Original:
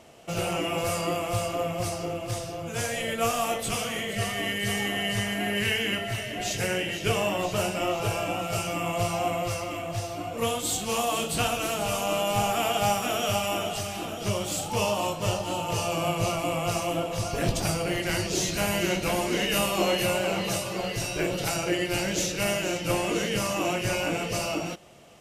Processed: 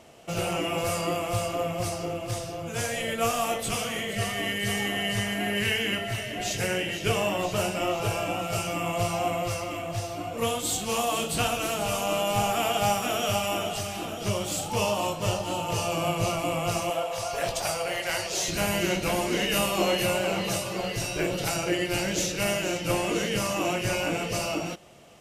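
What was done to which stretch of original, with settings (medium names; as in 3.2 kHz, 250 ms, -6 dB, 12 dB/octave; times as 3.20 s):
16.90–18.48 s: resonant low shelf 420 Hz -11.5 dB, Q 1.5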